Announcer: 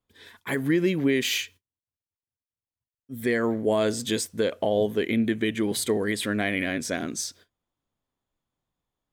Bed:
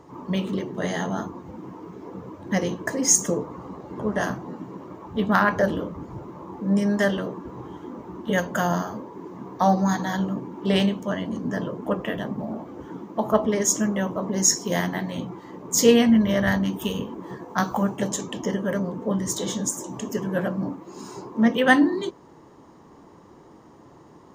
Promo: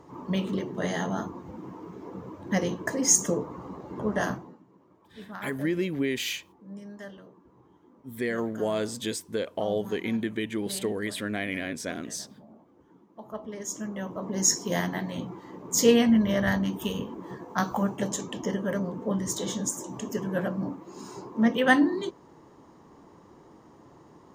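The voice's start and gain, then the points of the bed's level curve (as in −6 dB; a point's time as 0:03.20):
4.95 s, −5.0 dB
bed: 0:04.34 −2.5 dB
0:04.63 −21 dB
0:13.09 −21 dB
0:14.47 −3.5 dB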